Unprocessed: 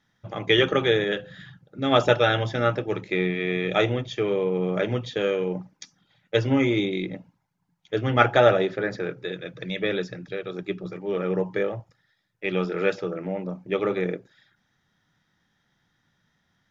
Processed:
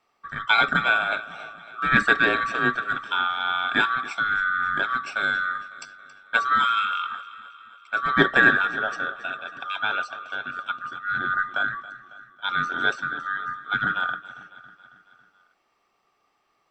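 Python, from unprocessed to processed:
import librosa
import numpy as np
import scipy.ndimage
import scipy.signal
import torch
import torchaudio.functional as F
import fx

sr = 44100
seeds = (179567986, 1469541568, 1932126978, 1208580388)

p1 = fx.band_swap(x, sr, width_hz=1000)
y = p1 + fx.echo_feedback(p1, sr, ms=275, feedback_pct=57, wet_db=-17, dry=0)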